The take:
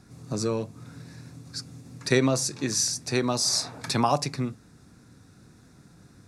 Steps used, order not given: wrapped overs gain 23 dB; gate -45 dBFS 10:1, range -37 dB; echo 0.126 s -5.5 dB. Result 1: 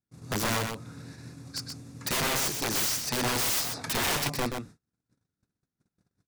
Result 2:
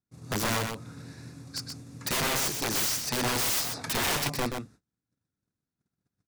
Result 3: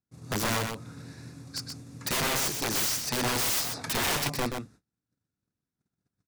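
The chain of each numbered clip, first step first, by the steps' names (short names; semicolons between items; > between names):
wrapped overs > echo > gate; wrapped overs > gate > echo; gate > wrapped overs > echo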